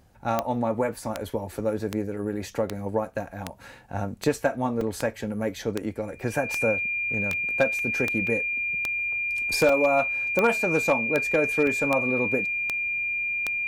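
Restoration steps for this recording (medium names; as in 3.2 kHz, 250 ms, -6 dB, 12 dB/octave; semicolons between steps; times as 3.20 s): clip repair -12 dBFS; de-click; band-stop 2.4 kHz, Q 30; interpolate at 4.81/7.33/7.79/8.27/9.69/11.67 s, 2.2 ms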